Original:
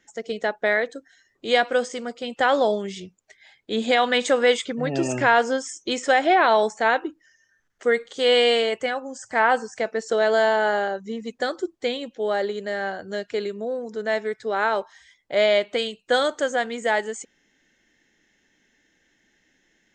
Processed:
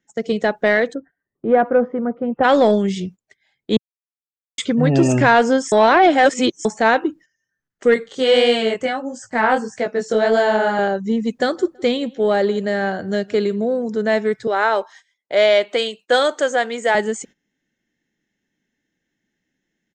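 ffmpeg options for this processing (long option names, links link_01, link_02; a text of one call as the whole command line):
ffmpeg -i in.wav -filter_complex "[0:a]asplit=3[link_01][link_02][link_03];[link_01]afade=type=out:start_time=0.93:duration=0.02[link_04];[link_02]lowpass=frequency=1400:width=0.5412,lowpass=frequency=1400:width=1.3066,afade=type=in:start_time=0.93:duration=0.02,afade=type=out:start_time=2.43:duration=0.02[link_05];[link_03]afade=type=in:start_time=2.43:duration=0.02[link_06];[link_04][link_05][link_06]amix=inputs=3:normalize=0,asettb=1/sr,asplit=3[link_07][link_08][link_09];[link_07]atrim=end=7.944[link_10];[link_08]atrim=start=7.94:end=10.79,asetpts=PTS-STARTPTS,afade=type=in:duration=0.004:curve=qsin,afade=type=out:start_time=2.846:duration=0.004:curve=qsin,flanger=delay=16:depth=7.3:speed=1.6[link_11];[link_09]atrim=start=10.786[link_12];[link_10][link_11]acrossfade=duration=0.004:curve1=hsin:curve2=qsin[link_13];[link_13][link_12]acrossfade=duration=0.004:curve1=qsin:curve2=hsin,asplit=3[link_14][link_15][link_16];[link_14]afade=type=out:start_time=11.5:duration=0.02[link_17];[link_15]asplit=2[link_18][link_19];[link_19]adelay=164,lowpass=frequency=2600:poles=1,volume=-23.5dB,asplit=2[link_20][link_21];[link_21]adelay=164,lowpass=frequency=2600:poles=1,volume=0.34[link_22];[link_18][link_20][link_22]amix=inputs=3:normalize=0,afade=type=in:start_time=11.5:duration=0.02,afade=type=out:start_time=13.83:duration=0.02[link_23];[link_16]afade=type=in:start_time=13.83:duration=0.02[link_24];[link_17][link_23][link_24]amix=inputs=3:normalize=0,asettb=1/sr,asplit=3[link_25][link_26][link_27];[link_25]atrim=end=14.474[link_28];[link_26]atrim=start=14.47:end=16.95,asetpts=PTS-STARTPTS,afade=type=in:duration=0.004:curve=qsin,afade=type=out:start_time=2.476:duration=0.004:curve=qsin,highpass=420[link_29];[link_27]atrim=start=16.946[link_30];[link_28][link_29]acrossfade=duration=0.004:curve1=hsin:curve2=qsin[link_31];[link_31][link_30]acrossfade=duration=0.004:curve1=qsin:curve2=hsin,asplit=5[link_32][link_33][link_34][link_35][link_36];[link_32]atrim=end=3.77,asetpts=PTS-STARTPTS,afade=type=out:start_time=3.766:duration=0.004:curve=hsin[link_37];[link_33]atrim=start=3.77:end=4.58,asetpts=PTS-STARTPTS,volume=0[link_38];[link_34]atrim=start=4.58:end=5.722,asetpts=PTS-STARTPTS,afade=type=in:duration=0.004:curve=hsin[link_39];[link_35]atrim=start=5.718:end=6.652,asetpts=PTS-STARTPTS,areverse[link_40];[link_36]atrim=start=6.648[link_41];[link_37][link_38][link_39]concat=n=3:v=0:a=1[link_42];[link_42][link_40]acrossfade=duration=0.004:curve1=hsin:curve2=hsin[link_43];[link_43][link_41]acrossfade=duration=0.004:curve1=hsin:curve2=hsin,agate=range=-18dB:threshold=-47dB:ratio=16:detection=peak,equalizer=frequency=160:width_type=o:width=2:gain=10.5,acontrast=59,volume=-1.5dB" out.wav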